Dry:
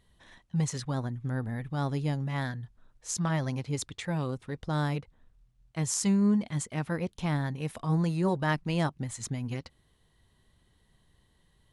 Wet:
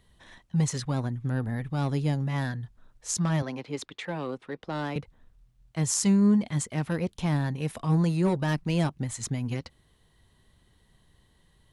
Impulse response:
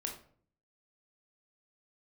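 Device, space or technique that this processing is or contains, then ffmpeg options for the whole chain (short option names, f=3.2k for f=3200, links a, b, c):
one-band saturation: -filter_complex "[0:a]asettb=1/sr,asplit=3[a][b][c];[a]atrim=end=3.424[d];[b]atrim=start=3.42:end=4.96,asetpts=PTS-STARTPTS,afade=t=in:d=0.004:c=qsin,afade=t=out:st=1.536:d=0.004:c=qsin,acrossover=split=220 4300:gain=0.112 1 0.224[e][f][g];[e][f][g]amix=inputs=3:normalize=0[h];[c]atrim=start=4.956[i];[d][h]acrossfade=d=0.004:c1=hsin:c2=qsin[j];[j][i]acrossfade=d=0.004:c1=qsin:c2=hsin,acrossover=split=440|4100[k][l][m];[l]asoftclip=type=tanh:threshold=-32dB[n];[k][n][m]amix=inputs=3:normalize=0,volume=3.5dB"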